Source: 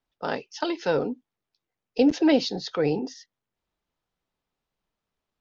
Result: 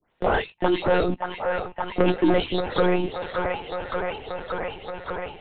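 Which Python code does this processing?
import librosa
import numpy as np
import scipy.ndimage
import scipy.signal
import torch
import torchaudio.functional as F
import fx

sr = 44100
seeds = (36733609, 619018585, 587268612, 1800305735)

p1 = fx.spec_delay(x, sr, highs='late', ms=235)
p2 = scipy.signal.sosfilt(scipy.signal.butter(2, 69.0, 'highpass', fs=sr, output='sos'), p1)
p3 = fx.hum_notches(p2, sr, base_hz=60, count=3)
p4 = fx.leveller(p3, sr, passes=2)
p5 = p4 + fx.echo_wet_bandpass(p4, sr, ms=575, feedback_pct=62, hz=1200.0, wet_db=-6.5, dry=0)
p6 = fx.lpc_monotone(p5, sr, seeds[0], pitch_hz=180.0, order=16)
y = fx.band_squash(p6, sr, depth_pct=70)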